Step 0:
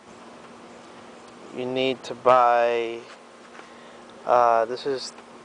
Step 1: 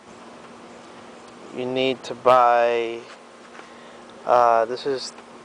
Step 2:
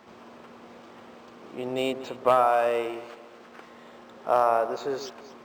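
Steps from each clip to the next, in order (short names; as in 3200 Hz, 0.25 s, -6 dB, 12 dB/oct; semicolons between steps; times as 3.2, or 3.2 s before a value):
hard clip -7 dBFS, distortion -27 dB; gain +2 dB
echo with dull and thin repeats by turns 0.118 s, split 910 Hz, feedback 58%, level -11 dB; decimation joined by straight lines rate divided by 4×; gain -5.5 dB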